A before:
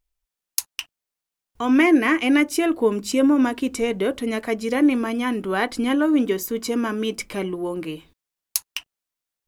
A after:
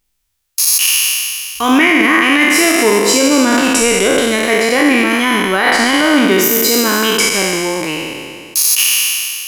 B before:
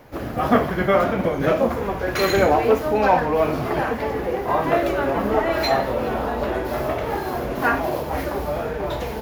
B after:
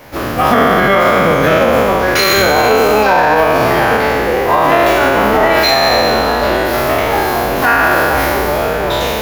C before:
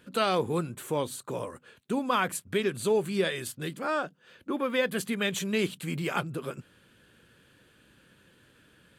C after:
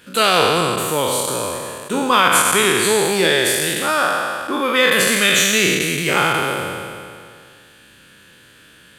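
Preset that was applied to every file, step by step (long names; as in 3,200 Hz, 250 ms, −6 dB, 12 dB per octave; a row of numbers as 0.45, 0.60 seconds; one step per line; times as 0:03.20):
peak hold with a decay on every bin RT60 2.24 s
tilt shelving filter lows −4.5 dB, about 1,100 Hz
brickwall limiter −10.5 dBFS
normalise the peak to −1.5 dBFS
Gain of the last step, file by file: +9.0, +9.0, +9.0 decibels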